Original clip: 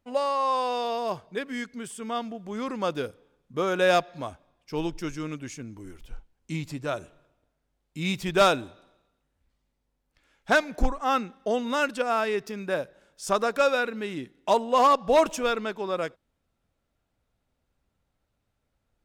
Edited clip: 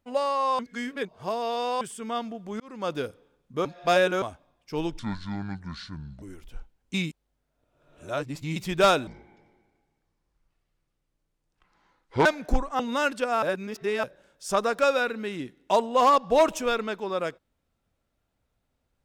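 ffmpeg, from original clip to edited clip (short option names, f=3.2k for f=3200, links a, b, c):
-filter_complex "[0:a]asplit=15[a][b][c][d][e][f][g][h][i][j][k][l][m][n][o];[a]atrim=end=0.592[p];[b]atrim=start=0.588:end=1.812,asetpts=PTS-STARTPTS,areverse[q];[c]atrim=start=1.808:end=2.6,asetpts=PTS-STARTPTS,afade=t=out:st=0.788:d=0.004:c=hsin[r];[d]atrim=start=2.6:end=3.652,asetpts=PTS-STARTPTS,afade=t=in:d=0.35[s];[e]atrim=start=3.648:end=4.222,asetpts=PTS-STARTPTS,areverse[t];[f]atrim=start=4.218:end=4.994[u];[g]atrim=start=4.99:end=5.79,asetpts=PTS-STARTPTS,asetrate=28665,aresample=44100[v];[h]atrim=start=5.786:end=6.512[w];[i]atrim=start=6.508:end=8.132,asetpts=PTS-STARTPTS,areverse[x];[j]atrim=start=8.128:end=8.644[y];[k]atrim=start=8.64:end=10.55,asetpts=PTS-STARTPTS,asetrate=26460,aresample=44100[z];[l]atrim=start=10.546:end=11.092[aa];[m]atrim=start=11.568:end=12.202[ab];[n]atrim=start=12.198:end=12.812,asetpts=PTS-STARTPTS,areverse[ac];[o]atrim=start=12.808[ad];[p][q]acrossfade=d=0.004:c1=hsin:c2=hsin[ae];[r][s]concat=n=2:v=0:a=1[af];[ae][af]acrossfade=d=0.004:c1=hsin:c2=hsin[ag];[ag][t]acrossfade=d=0.004:c1=hsin:c2=hsin[ah];[ah][u]acrossfade=d=0.004:c1=hsin:c2=hsin[ai];[ai][v]acrossfade=d=0.004:c1=hsin:c2=hsin[aj];[aj][w]acrossfade=d=0.004:c1=hsin:c2=hsin[ak];[ak][x]acrossfade=d=0.004:c1=hsin:c2=hsin[al];[al][y]acrossfade=d=0.004:c1=hsin:c2=hsin[am];[am][z]acrossfade=d=0.004:c1=hsin:c2=hsin[an];[an][aa]acrossfade=d=0.004:c1=hsin:c2=hsin[ao];[ao][ab]acrossfade=d=0.004:c1=hsin:c2=hsin[ap];[ap][ac]acrossfade=d=0.004:c1=hsin:c2=hsin[aq];[aq][ad]acrossfade=d=0.004:c1=hsin:c2=hsin"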